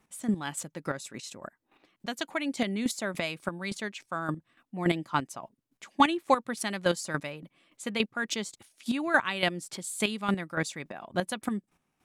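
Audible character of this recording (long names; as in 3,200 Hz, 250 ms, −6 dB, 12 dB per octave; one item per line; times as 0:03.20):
chopped level 3.5 Hz, depth 65%, duty 20%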